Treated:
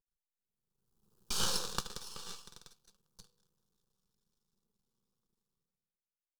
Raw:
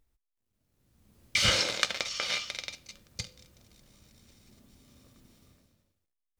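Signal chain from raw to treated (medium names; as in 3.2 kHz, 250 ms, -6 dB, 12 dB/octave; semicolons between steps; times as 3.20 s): Doppler pass-by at 1.57 s, 13 m/s, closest 4.4 m; half-wave rectifier; static phaser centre 420 Hz, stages 8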